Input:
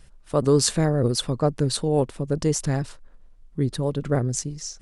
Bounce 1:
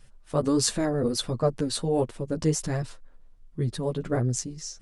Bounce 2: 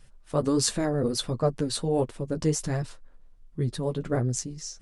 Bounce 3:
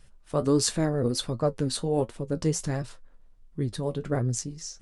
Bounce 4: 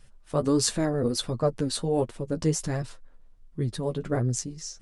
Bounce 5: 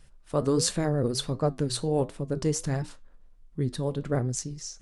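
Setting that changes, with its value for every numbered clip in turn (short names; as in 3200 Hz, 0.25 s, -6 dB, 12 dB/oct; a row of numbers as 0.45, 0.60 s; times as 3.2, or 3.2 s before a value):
flange, regen: 0, -22, +54, +21, -79%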